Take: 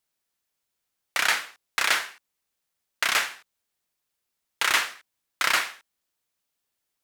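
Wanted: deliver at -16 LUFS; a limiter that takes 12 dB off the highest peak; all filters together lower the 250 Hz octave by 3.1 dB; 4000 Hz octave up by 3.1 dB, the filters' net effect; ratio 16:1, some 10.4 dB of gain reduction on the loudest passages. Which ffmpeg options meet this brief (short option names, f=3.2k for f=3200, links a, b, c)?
-af "equalizer=f=250:t=o:g=-4.5,equalizer=f=4k:t=o:g=4,acompressor=threshold=-27dB:ratio=16,volume=19.5dB,alimiter=limit=0dB:level=0:latency=1"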